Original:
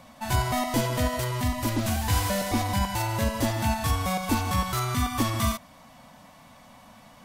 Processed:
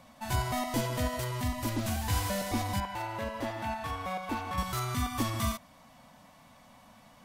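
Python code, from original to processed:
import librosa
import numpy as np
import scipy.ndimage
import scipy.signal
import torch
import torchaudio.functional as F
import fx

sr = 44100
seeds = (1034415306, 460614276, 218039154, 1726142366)

y = fx.bass_treble(x, sr, bass_db=-10, treble_db=-14, at=(2.8, 4.58))
y = y * librosa.db_to_amplitude(-5.5)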